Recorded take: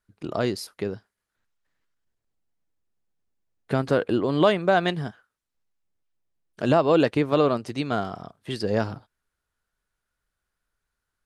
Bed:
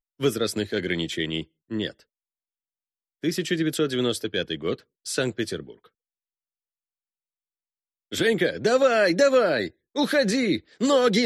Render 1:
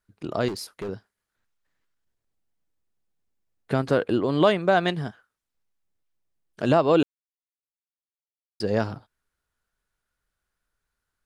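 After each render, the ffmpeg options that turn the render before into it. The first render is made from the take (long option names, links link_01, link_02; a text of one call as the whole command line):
ffmpeg -i in.wav -filter_complex "[0:a]asettb=1/sr,asplit=3[link_01][link_02][link_03];[link_01]atrim=end=0.484[link_04];[link_02]atrim=start=0.48:end=0.89,asetpts=PTS-STARTPTS,afade=type=in:duration=0.004:curve=qsin,afade=type=out:start_time=0.406:duration=0.004:curve=qsin,volume=28.5dB,asoftclip=hard,volume=-28.5dB[link_05];[link_03]atrim=start=0.886[link_06];[link_04][link_05]acrossfade=duration=0.004:curve1=hsin:curve2=qsin[link_07];[link_07][link_06]acrossfade=duration=0.004:curve1=qsin:curve2=hsin,asplit=3[link_08][link_09][link_10];[link_08]atrim=end=7.03,asetpts=PTS-STARTPTS,afade=type=out:start_time=7.026:duration=0.004:curve=hsin[link_11];[link_09]atrim=start=7.03:end=8.6,asetpts=PTS-STARTPTS,volume=0[link_12];[link_10]atrim=start=8.6,asetpts=PTS-STARTPTS,afade=type=in:duration=0.004:curve=hsin[link_13];[link_11][link_12][link_13]concat=n=3:v=0:a=1" out.wav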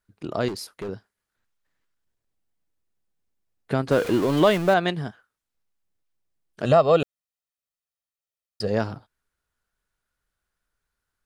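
ffmpeg -i in.wav -filter_complex "[0:a]asettb=1/sr,asplit=3[link_01][link_02][link_03];[link_01]atrim=end=3.914[link_04];[link_02]atrim=start=3.91:end=4.74,asetpts=PTS-STARTPTS,afade=type=in:duration=0.004:curve=qsin,afade=type=out:start_time=0.826:duration=0.004:curve=qsin,aeval=exprs='val(0)+0.5*0.0447*sgn(val(0))':channel_layout=same[link_05];[link_03]atrim=start=4.736[link_06];[link_04][link_05]acrossfade=duration=0.004:curve1=hsin:curve2=qsin[link_07];[link_07][link_06]acrossfade=duration=0.004:curve1=qsin:curve2=hsin,asettb=1/sr,asplit=3[link_08][link_09][link_10];[link_08]atrim=end=6.654[link_11];[link_09]atrim=start=6.65:end=8.68,asetpts=PTS-STARTPTS,afade=type=in:duration=0.004:curve=qsin,afade=type=out:start_time=2.026:duration=0.004:curve=qsin,aecho=1:1:1.6:0.66,atrim=end_sample=89523[link_12];[link_10]atrim=start=8.676[link_13];[link_11][link_12]acrossfade=duration=0.004:curve1=hsin:curve2=qsin[link_14];[link_14][link_13]acrossfade=duration=0.004:curve1=qsin:curve2=hsin" out.wav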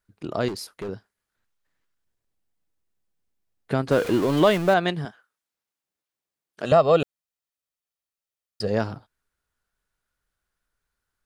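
ffmpeg -i in.wav -filter_complex "[0:a]asettb=1/sr,asplit=3[link_01][link_02][link_03];[link_01]atrim=end=5.054[link_04];[link_02]atrim=start=5.05:end=6.72,asetpts=PTS-STARTPTS,afade=type=in:duration=0.004:curve=qsin,afade=type=out:start_time=1.666:duration=0.004:curve=qsin,highpass=frequency=370:poles=1[link_05];[link_03]atrim=start=6.716[link_06];[link_04][link_05]acrossfade=duration=0.004:curve1=hsin:curve2=qsin[link_07];[link_07][link_06]acrossfade=duration=0.004:curve1=qsin:curve2=hsin" out.wav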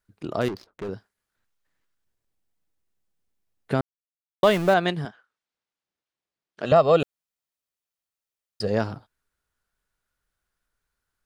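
ffmpeg -i in.wav -filter_complex "[0:a]asettb=1/sr,asplit=3[link_01][link_02][link_03];[link_01]atrim=end=0.414[link_04];[link_02]atrim=start=0.41:end=0.84,asetpts=PTS-STARTPTS,afade=type=in:duration=0.004:curve=qsin,afade=type=out:start_time=0.426:duration=0.004:curve=qsin,adynamicsmooth=sensitivity=7:basefreq=580[link_05];[link_03]atrim=start=0.836[link_06];[link_04][link_05]acrossfade=duration=0.004:curve1=hsin:curve2=qsin[link_07];[link_07][link_06]acrossfade=duration=0.004:curve1=qsin:curve2=hsin,asettb=1/sr,asplit=3[link_08][link_09][link_10];[link_08]atrim=end=5.074[link_11];[link_09]atrim=start=5.07:end=6.76,asetpts=PTS-STARTPTS,afade=type=in:duration=0.004:curve=qsin,afade=type=out:start_time=1.686:duration=0.004:curve=qsin,lowpass=5300[link_12];[link_10]atrim=start=6.756[link_13];[link_11][link_12]acrossfade=duration=0.004:curve1=hsin:curve2=qsin[link_14];[link_14][link_13]acrossfade=duration=0.004:curve1=qsin:curve2=hsin,asplit=3[link_15][link_16][link_17];[link_15]atrim=end=3.81,asetpts=PTS-STARTPTS,afade=type=out:start_time=3.806:duration=0.004:curve=hsin[link_18];[link_16]atrim=start=3.81:end=4.43,asetpts=PTS-STARTPTS,volume=0[link_19];[link_17]atrim=start=4.43,asetpts=PTS-STARTPTS,afade=type=in:duration=0.004:curve=hsin[link_20];[link_18][link_19][link_20]concat=n=3:v=0:a=1" out.wav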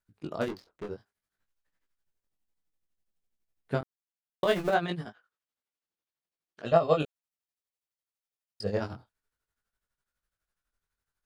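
ffmpeg -i in.wav -af "tremolo=f=12:d=0.78,flanger=delay=17.5:depth=6.2:speed=0.6" out.wav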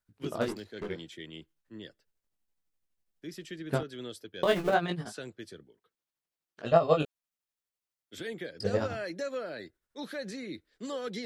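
ffmpeg -i in.wav -i bed.wav -filter_complex "[1:a]volume=-17dB[link_01];[0:a][link_01]amix=inputs=2:normalize=0" out.wav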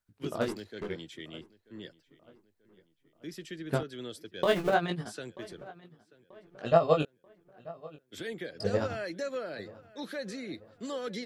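ffmpeg -i in.wav -filter_complex "[0:a]asplit=2[link_01][link_02];[link_02]adelay=936,lowpass=frequency=2800:poles=1,volume=-20.5dB,asplit=2[link_03][link_04];[link_04]adelay=936,lowpass=frequency=2800:poles=1,volume=0.48,asplit=2[link_05][link_06];[link_06]adelay=936,lowpass=frequency=2800:poles=1,volume=0.48,asplit=2[link_07][link_08];[link_08]adelay=936,lowpass=frequency=2800:poles=1,volume=0.48[link_09];[link_01][link_03][link_05][link_07][link_09]amix=inputs=5:normalize=0" out.wav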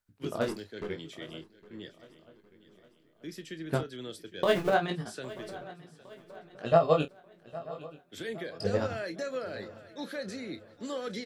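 ffmpeg -i in.wav -filter_complex "[0:a]asplit=2[link_01][link_02];[link_02]adelay=31,volume=-12dB[link_03];[link_01][link_03]amix=inputs=2:normalize=0,aecho=1:1:810|1620|2430|3240:0.119|0.0547|0.0251|0.0116" out.wav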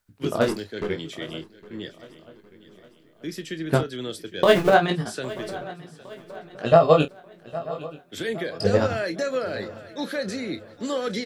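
ffmpeg -i in.wav -af "volume=9dB,alimiter=limit=-3dB:level=0:latency=1" out.wav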